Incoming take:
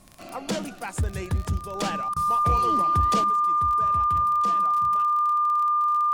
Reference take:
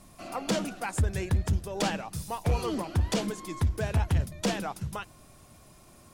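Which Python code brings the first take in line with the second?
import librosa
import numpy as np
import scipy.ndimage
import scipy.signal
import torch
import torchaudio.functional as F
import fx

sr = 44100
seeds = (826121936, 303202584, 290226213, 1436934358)

y = fx.fix_declick_ar(x, sr, threshold=6.5)
y = fx.notch(y, sr, hz=1200.0, q=30.0)
y = fx.fix_interpolate(y, sr, at_s=(2.14,), length_ms=22.0)
y = fx.fix_level(y, sr, at_s=3.24, step_db=10.0)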